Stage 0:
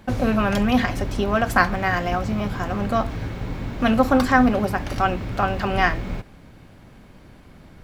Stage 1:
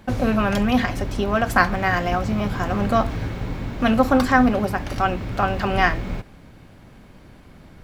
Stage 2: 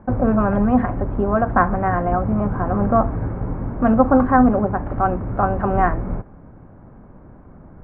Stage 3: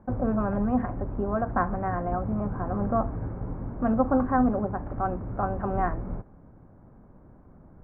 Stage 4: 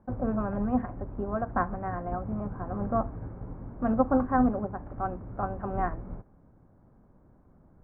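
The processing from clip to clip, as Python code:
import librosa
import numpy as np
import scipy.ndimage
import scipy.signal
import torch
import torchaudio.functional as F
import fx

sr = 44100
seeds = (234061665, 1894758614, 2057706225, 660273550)

y1 = fx.rider(x, sr, range_db=4, speed_s=2.0)
y2 = scipy.signal.sosfilt(scipy.signal.butter(4, 1300.0, 'lowpass', fs=sr, output='sos'), y1)
y2 = F.gain(torch.from_numpy(y2), 3.0).numpy()
y3 = fx.lowpass(y2, sr, hz=1800.0, slope=6)
y3 = F.gain(torch.from_numpy(y3), -8.5).numpy()
y4 = fx.upward_expand(y3, sr, threshold_db=-32.0, expansion=1.5)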